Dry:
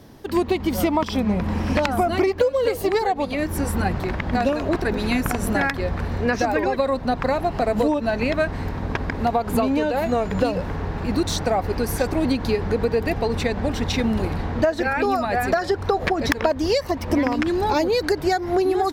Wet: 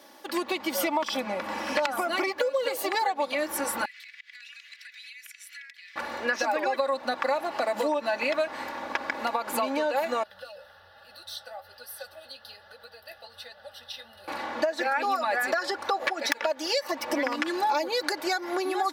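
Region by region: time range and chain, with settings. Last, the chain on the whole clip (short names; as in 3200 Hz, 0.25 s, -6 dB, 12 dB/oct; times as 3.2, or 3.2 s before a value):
3.85–5.96 elliptic high-pass 2000 Hz, stop band 60 dB + high shelf 5100 Hz -11 dB + compressor 12:1, threshold -43 dBFS
10.23–14.28 EQ curve 110 Hz 0 dB, 230 Hz -15 dB, 420 Hz -15 dB, 1800 Hz -10 dB, 8200 Hz -3 dB + flange 1.2 Hz, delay 6.4 ms, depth 9.2 ms, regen +47% + fixed phaser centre 1500 Hz, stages 8
16.1–16.83 low shelf 330 Hz -8 dB + notch 1100 Hz, Q 6.7
whole clip: HPF 630 Hz 12 dB/oct; comb 3.5 ms, depth 69%; compressor 4:1, threshold -23 dBFS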